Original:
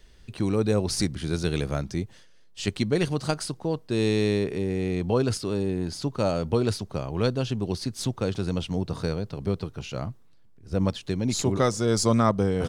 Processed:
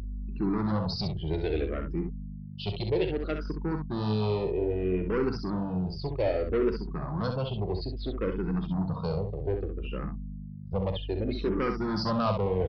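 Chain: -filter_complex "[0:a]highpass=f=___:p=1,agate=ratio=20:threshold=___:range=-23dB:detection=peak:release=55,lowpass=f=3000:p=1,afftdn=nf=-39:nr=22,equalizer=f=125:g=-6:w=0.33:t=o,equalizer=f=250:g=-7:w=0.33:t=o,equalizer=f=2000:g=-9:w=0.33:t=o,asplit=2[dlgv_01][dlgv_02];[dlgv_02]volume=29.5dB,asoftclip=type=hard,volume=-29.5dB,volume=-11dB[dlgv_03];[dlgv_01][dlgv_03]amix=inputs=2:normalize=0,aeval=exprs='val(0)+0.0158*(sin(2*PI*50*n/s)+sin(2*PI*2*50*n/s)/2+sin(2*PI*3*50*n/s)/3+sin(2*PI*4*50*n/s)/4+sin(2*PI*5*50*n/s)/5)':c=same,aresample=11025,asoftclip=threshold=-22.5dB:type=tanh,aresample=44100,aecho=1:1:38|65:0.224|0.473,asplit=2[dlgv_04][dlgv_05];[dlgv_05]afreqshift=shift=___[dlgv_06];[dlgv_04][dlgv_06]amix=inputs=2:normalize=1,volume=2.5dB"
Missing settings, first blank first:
73, -48dB, -0.62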